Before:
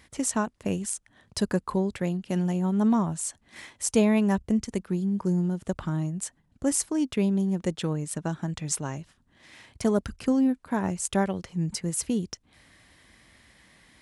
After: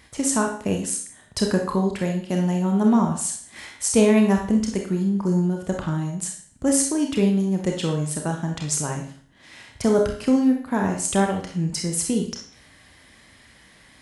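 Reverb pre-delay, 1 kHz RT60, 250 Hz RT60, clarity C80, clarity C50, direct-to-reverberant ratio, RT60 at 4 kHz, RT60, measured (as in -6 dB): 29 ms, 0.50 s, 0.50 s, 10.0 dB, 5.5 dB, 2.0 dB, 0.50 s, 0.50 s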